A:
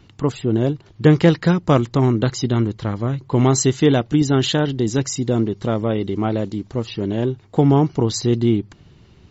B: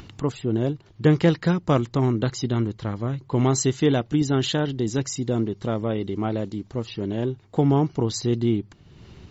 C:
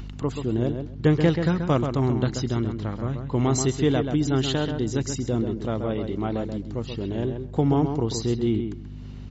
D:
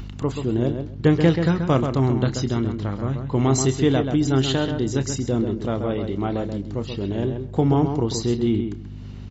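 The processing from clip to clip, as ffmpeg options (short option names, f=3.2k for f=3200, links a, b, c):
-af "acompressor=mode=upward:threshold=-29dB:ratio=2.5,volume=-5dB"
-filter_complex "[0:a]aeval=exprs='val(0)+0.0224*(sin(2*PI*50*n/s)+sin(2*PI*2*50*n/s)/2+sin(2*PI*3*50*n/s)/3+sin(2*PI*4*50*n/s)/4+sin(2*PI*5*50*n/s)/5)':c=same,asplit=2[a][b];[b]adelay=132,lowpass=f=2.8k:p=1,volume=-6.5dB,asplit=2[c][d];[d]adelay=132,lowpass=f=2.8k:p=1,volume=0.17,asplit=2[e][f];[f]adelay=132,lowpass=f=2.8k:p=1,volume=0.17[g];[c][e][g]amix=inputs=3:normalize=0[h];[a][h]amix=inputs=2:normalize=0,volume=-2dB"
-filter_complex "[0:a]asplit=2[a][b];[b]adelay=30,volume=-13dB[c];[a][c]amix=inputs=2:normalize=0,volume=2.5dB"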